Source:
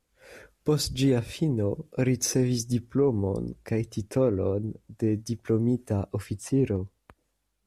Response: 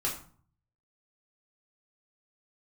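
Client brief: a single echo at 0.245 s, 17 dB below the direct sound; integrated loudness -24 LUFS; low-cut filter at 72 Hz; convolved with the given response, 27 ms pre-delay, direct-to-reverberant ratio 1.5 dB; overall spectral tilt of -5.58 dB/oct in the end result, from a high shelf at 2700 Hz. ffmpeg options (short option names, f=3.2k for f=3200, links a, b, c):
-filter_complex "[0:a]highpass=72,highshelf=f=2.7k:g=4,aecho=1:1:245:0.141,asplit=2[a][b];[1:a]atrim=start_sample=2205,adelay=27[c];[b][c]afir=irnorm=-1:irlink=0,volume=-7dB[d];[a][d]amix=inputs=2:normalize=0,volume=0.5dB"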